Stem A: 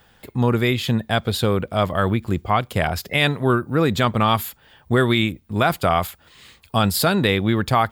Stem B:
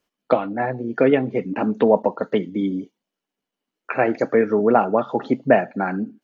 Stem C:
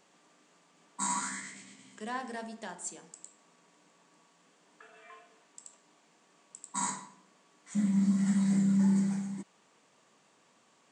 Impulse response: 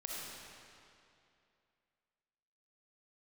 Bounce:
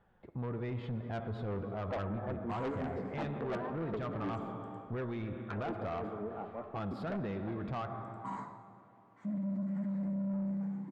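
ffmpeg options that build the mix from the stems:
-filter_complex "[0:a]flanger=delay=5:depth=5.7:regen=59:speed=0.28:shape=triangular,volume=-9.5dB,asplit=2[link_01][link_02];[link_02]volume=-7dB[link_03];[1:a]alimiter=limit=-6dB:level=0:latency=1:release=356,aeval=exprs='val(0)*pow(10,-21*(0.5-0.5*cos(2*PI*5.6*n/s))/20)':channel_layout=same,adelay=1600,volume=-4dB,afade=type=out:start_time=5.61:duration=0.66:silence=0.266073,asplit=2[link_04][link_05];[link_05]volume=-10dB[link_06];[2:a]adelay=1500,volume=-2.5dB,asplit=2[link_07][link_08];[link_08]volume=-13dB[link_09];[3:a]atrim=start_sample=2205[link_10];[link_03][link_06][link_09]amix=inputs=3:normalize=0[link_11];[link_11][link_10]afir=irnorm=-1:irlink=0[link_12];[link_01][link_04][link_07][link_12]amix=inputs=4:normalize=0,lowpass=1200,asoftclip=type=tanh:threshold=-28dB,alimiter=level_in=8.5dB:limit=-24dB:level=0:latency=1,volume=-8.5dB"

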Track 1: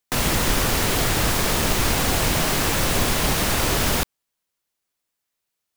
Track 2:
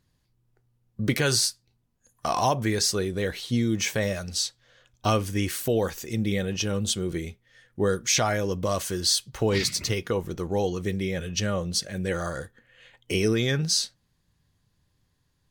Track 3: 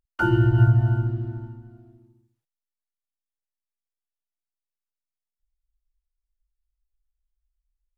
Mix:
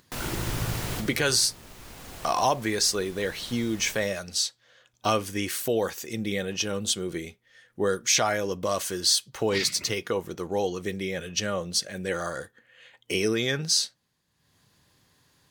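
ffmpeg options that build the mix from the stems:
ffmpeg -i stem1.wav -i stem2.wav -i stem3.wav -filter_complex "[0:a]volume=-12dB[link_01];[1:a]highpass=frequency=320:poles=1,volume=1dB,asplit=2[link_02][link_03];[2:a]tremolo=f=53:d=0.974,volume=-11.5dB[link_04];[link_03]apad=whole_len=254074[link_05];[link_01][link_05]sidechaincompress=threshold=-40dB:ratio=4:attack=41:release=1140[link_06];[link_06][link_02][link_04]amix=inputs=3:normalize=0,acompressor=mode=upward:threshold=-52dB:ratio=2.5" out.wav

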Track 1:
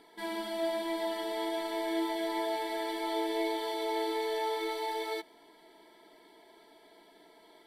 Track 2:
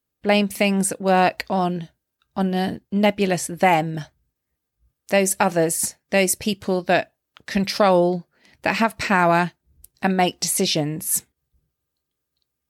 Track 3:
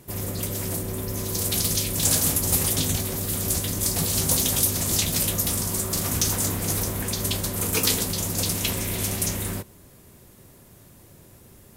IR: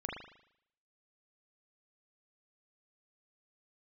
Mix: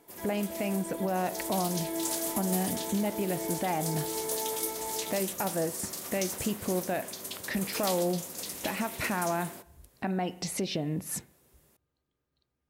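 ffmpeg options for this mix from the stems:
-filter_complex "[0:a]lowpass=frequency=1200:poles=1,volume=-2dB[link_01];[1:a]lowpass=frequency=1500:poles=1,acompressor=threshold=-32dB:ratio=2,volume=2dB,asplit=2[link_02][link_03];[link_03]volume=-19.5dB[link_04];[2:a]highpass=300,volume=-12dB[link_05];[link_01][link_02]amix=inputs=2:normalize=0,alimiter=limit=-22.5dB:level=0:latency=1:release=190,volume=0dB[link_06];[3:a]atrim=start_sample=2205[link_07];[link_04][link_07]afir=irnorm=-1:irlink=0[link_08];[link_05][link_06][link_08]amix=inputs=3:normalize=0"

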